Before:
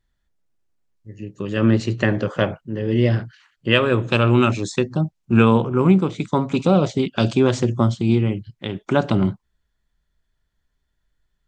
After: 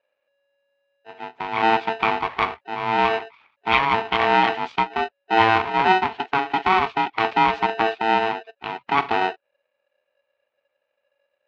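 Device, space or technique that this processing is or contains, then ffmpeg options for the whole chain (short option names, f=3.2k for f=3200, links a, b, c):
ring modulator pedal into a guitar cabinet: -af "aeval=exprs='val(0)*sgn(sin(2*PI*560*n/s))':c=same,highpass=99,equalizer=f=160:t=q:w=4:g=-8,equalizer=f=350:t=q:w=4:g=-3,equalizer=f=900:t=q:w=4:g=9,equalizer=f=1.3k:t=q:w=4:g=5,equalizer=f=2.4k:t=q:w=4:g=8,lowpass=f=3.6k:w=0.5412,lowpass=f=3.6k:w=1.3066,volume=-5.5dB"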